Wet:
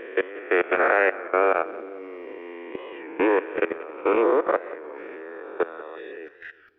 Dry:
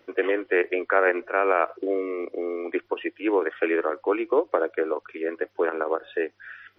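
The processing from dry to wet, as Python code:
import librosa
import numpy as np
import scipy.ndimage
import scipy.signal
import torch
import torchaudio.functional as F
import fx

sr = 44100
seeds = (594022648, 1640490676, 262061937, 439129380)

p1 = fx.spec_swells(x, sr, rise_s=2.62)
p2 = fx.low_shelf(p1, sr, hz=120.0, db=4.5)
p3 = fx.level_steps(p2, sr, step_db=19)
p4 = p3 + fx.echo_feedback(p3, sr, ms=181, feedback_pct=48, wet_db=-18.0, dry=0)
y = fx.record_warp(p4, sr, rpm=33.33, depth_cents=100.0)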